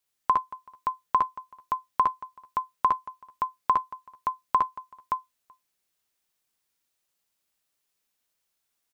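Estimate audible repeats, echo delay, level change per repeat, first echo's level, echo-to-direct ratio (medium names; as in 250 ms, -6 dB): 3, 60 ms, no regular repeats, -3.0 dB, -0.5 dB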